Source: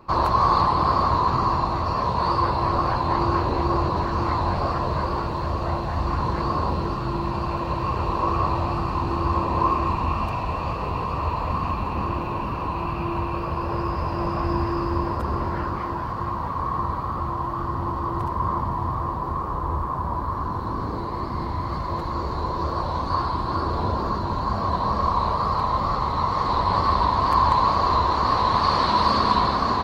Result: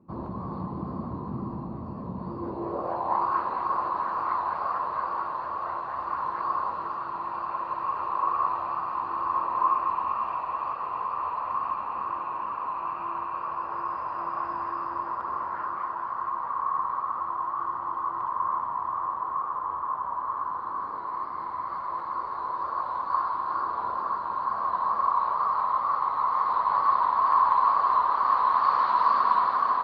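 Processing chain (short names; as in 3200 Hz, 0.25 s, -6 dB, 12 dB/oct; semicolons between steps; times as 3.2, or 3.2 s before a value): band-pass sweep 210 Hz -> 1200 Hz, 2.28–3.33; tape echo 0.32 s, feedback 90%, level -13 dB, low-pass 2700 Hz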